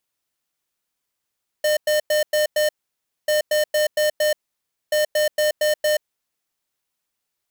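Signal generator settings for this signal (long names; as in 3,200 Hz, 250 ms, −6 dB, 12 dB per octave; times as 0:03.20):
beeps in groups square 606 Hz, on 0.13 s, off 0.10 s, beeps 5, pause 0.59 s, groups 3, −18.5 dBFS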